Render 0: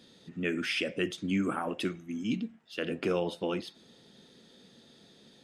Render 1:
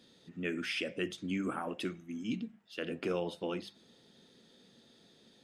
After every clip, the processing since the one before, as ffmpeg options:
-af "bandreject=f=50:t=h:w=6,bandreject=f=100:t=h:w=6,bandreject=f=150:t=h:w=6,bandreject=f=200:t=h:w=6,volume=0.596"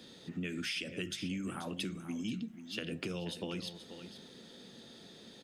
-filter_complex "[0:a]acrossover=split=190|3000[s0][s1][s2];[s1]acompressor=threshold=0.00398:ratio=6[s3];[s0][s3][s2]amix=inputs=3:normalize=0,aecho=1:1:484:0.224,acompressor=threshold=0.00708:ratio=6,volume=2.66"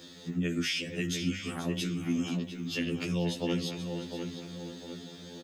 -filter_complex "[0:a]aexciter=amount=1.4:drive=3.1:freq=5800,asplit=2[s0][s1];[s1]adelay=702,lowpass=f=2200:p=1,volume=0.473,asplit=2[s2][s3];[s3]adelay=702,lowpass=f=2200:p=1,volume=0.49,asplit=2[s4][s5];[s5]adelay=702,lowpass=f=2200:p=1,volume=0.49,asplit=2[s6][s7];[s7]adelay=702,lowpass=f=2200:p=1,volume=0.49,asplit=2[s8][s9];[s9]adelay=702,lowpass=f=2200:p=1,volume=0.49,asplit=2[s10][s11];[s11]adelay=702,lowpass=f=2200:p=1,volume=0.49[s12];[s0][s2][s4][s6][s8][s10][s12]amix=inputs=7:normalize=0,afftfilt=real='re*2*eq(mod(b,4),0)':imag='im*2*eq(mod(b,4),0)':win_size=2048:overlap=0.75,volume=2.24"

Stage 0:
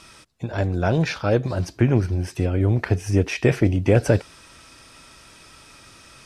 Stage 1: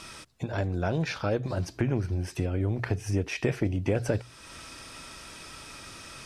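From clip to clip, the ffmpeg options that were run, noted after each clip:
-af "bandreject=f=60:t=h:w=6,bandreject=f=120:t=h:w=6,acompressor=threshold=0.0158:ratio=2,volume=1.41"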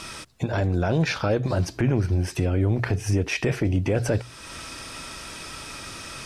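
-af "alimiter=limit=0.106:level=0:latency=1:release=14,volume=2.24"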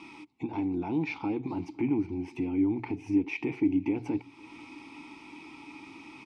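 -filter_complex "[0:a]asplit=3[s0][s1][s2];[s0]bandpass=f=300:t=q:w=8,volume=1[s3];[s1]bandpass=f=870:t=q:w=8,volume=0.501[s4];[s2]bandpass=f=2240:t=q:w=8,volume=0.355[s5];[s3][s4][s5]amix=inputs=3:normalize=0,asplit=2[s6][s7];[s7]adelay=507.3,volume=0.0398,highshelf=f=4000:g=-11.4[s8];[s6][s8]amix=inputs=2:normalize=0,volume=1.88"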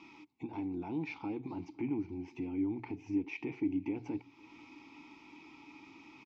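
-af "aresample=16000,aresample=44100,volume=0.422"

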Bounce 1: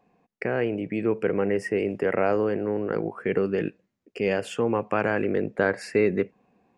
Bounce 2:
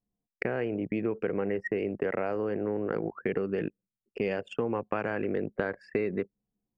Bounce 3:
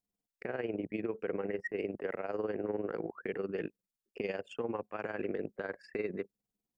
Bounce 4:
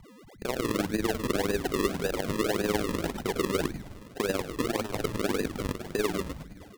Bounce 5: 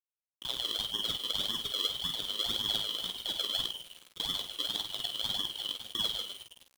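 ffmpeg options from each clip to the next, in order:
-af "anlmdn=10,highshelf=f=8500:g=-4.5,acompressor=threshold=0.0447:ratio=6,volume=1.12"
-af "bass=f=250:g=-6,treble=f=4000:g=5,alimiter=limit=0.0668:level=0:latency=1:release=31,tremolo=f=20:d=0.667"
-filter_complex "[0:a]asplit=2[s0][s1];[s1]asplit=8[s2][s3][s4][s5][s6][s7][s8][s9];[s2]adelay=103,afreqshift=-120,volume=0.376[s10];[s3]adelay=206,afreqshift=-240,volume=0.232[s11];[s4]adelay=309,afreqshift=-360,volume=0.145[s12];[s5]adelay=412,afreqshift=-480,volume=0.0891[s13];[s6]adelay=515,afreqshift=-600,volume=0.0556[s14];[s7]adelay=618,afreqshift=-720,volume=0.0343[s15];[s8]adelay=721,afreqshift=-840,volume=0.0214[s16];[s9]adelay=824,afreqshift=-960,volume=0.0132[s17];[s10][s11][s12][s13][s14][s15][s16][s17]amix=inputs=8:normalize=0[s18];[s0][s18]amix=inputs=2:normalize=0,aeval=exprs='val(0)+0.00158*sin(2*PI*2000*n/s)':c=same,acrusher=samples=40:mix=1:aa=0.000001:lfo=1:lforange=40:lforate=1.8,volume=2.24"
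-filter_complex "[0:a]afftfilt=real='real(if(lt(b,272),68*(eq(floor(b/68),0)*1+eq(floor(b/68),1)*3+eq(floor(b/68),2)*0+eq(floor(b/68),3)*2)+mod(b,68),b),0)':imag='imag(if(lt(b,272),68*(eq(floor(b/68),0)*1+eq(floor(b/68),1)*3+eq(floor(b/68),2)*0+eq(floor(b/68),3)*2)+mod(b,68),b),0)':win_size=2048:overlap=0.75,aeval=exprs='val(0)*gte(abs(val(0)),0.0112)':c=same,asplit=2[s0][s1];[s1]aecho=0:1:17|49:0.335|0.398[s2];[s0][s2]amix=inputs=2:normalize=0,volume=0.473"

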